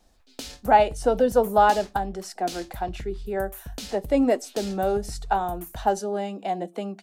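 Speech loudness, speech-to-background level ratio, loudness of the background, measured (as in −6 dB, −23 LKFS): −25.0 LKFS, 15.0 dB, −40.0 LKFS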